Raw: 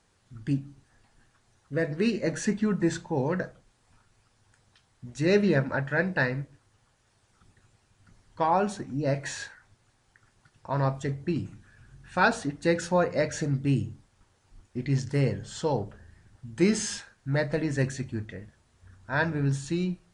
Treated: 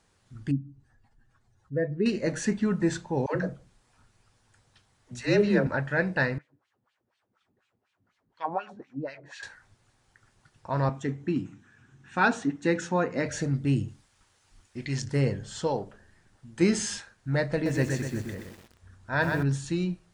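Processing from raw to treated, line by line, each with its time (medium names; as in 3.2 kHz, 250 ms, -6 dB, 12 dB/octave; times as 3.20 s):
0.51–2.06 s: spectral contrast enhancement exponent 1.6
3.26–5.67 s: phase dispersion lows, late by 98 ms, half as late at 380 Hz
6.38–9.43 s: wah-wah 4.1 Hz 210–3200 Hz, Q 2.1
10.89–13.26 s: cabinet simulation 140–7700 Hz, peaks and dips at 270 Hz +6 dB, 590 Hz -8 dB, 4.6 kHz -9 dB
13.88–15.02 s: tilt shelf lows -5.5 dB
15.67–16.61 s: peaking EQ 72 Hz -11.5 dB 2.1 oct
17.53–19.43 s: bit-crushed delay 125 ms, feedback 55%, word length 8-bit, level -4.5 dB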